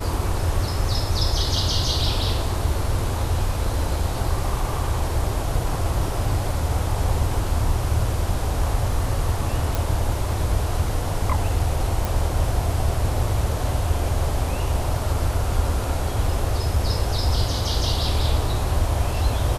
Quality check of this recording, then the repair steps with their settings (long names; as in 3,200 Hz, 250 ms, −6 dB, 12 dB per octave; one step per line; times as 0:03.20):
0:09.75: click
0:12.05: click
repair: click removal